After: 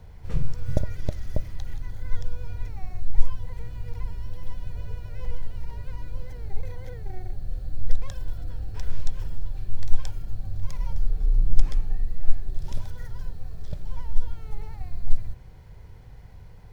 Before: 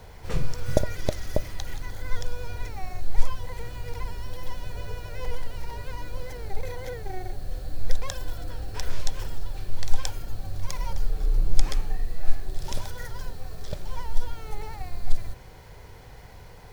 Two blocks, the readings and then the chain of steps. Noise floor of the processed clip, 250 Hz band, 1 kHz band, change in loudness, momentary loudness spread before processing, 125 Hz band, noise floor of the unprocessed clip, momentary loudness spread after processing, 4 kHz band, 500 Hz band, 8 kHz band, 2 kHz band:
-44 dBFS, -2.0 dB, -9.0 dB, 0.0 dB, 9 LU, +1.5 dB, -45 dBFS, 9 LU, -10.5 dB, -8.0 dB, n/a, -9.0 dB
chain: tone controls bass +11 dB, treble -3 dB; gain -9 dB

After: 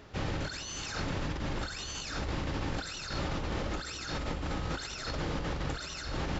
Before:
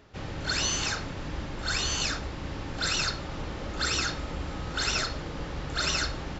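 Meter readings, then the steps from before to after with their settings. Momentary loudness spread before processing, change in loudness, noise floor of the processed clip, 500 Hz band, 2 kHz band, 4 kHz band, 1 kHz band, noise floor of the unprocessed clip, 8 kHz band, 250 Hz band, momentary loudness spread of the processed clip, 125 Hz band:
10 LU, -6.0 dB, -41 dBFS, -1.0 dB, -7.5 dB, -9.5 dB, -3.5 dB, -38 dBFS, n/a, -0.5 dB, 2 LU, -1.0 dB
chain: negative-ratio compressor -36 dBFS, ratio -1

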